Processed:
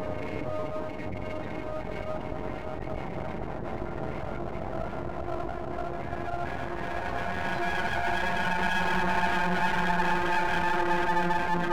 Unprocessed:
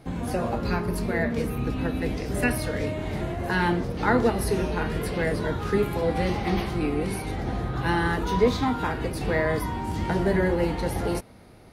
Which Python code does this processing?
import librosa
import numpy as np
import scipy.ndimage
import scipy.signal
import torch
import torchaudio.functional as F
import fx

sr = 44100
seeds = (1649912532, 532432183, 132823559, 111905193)

p1 = fx.paulstretch(x, sr, seeds[0], factor=14.0, window_s=0.5, from_s=2.91)
p2 = fx.low_shelf(p1, sr, hz=390.0, db=-7.0)
p3 = 10.0 ** (-22.0 / 20.0) * (np.abs((p2 / 10.0 ** (-22.0 / 20.0) + 3.0) % 4.0 - 2.0) - 1.0)
p4 = p2 + (p3 * librosa.db_to_amplitude(-6.0))
p5 = fx.dynamic_eq(p4, sr, hz=770.0, q=2.9, threshold_db=-39.0, ratio=4.0, max_db=6)
p6 = fx.spec_gate(p5, sr, threshold_db=-15, keep='strong')
y = np.maximum(p6, 0.0)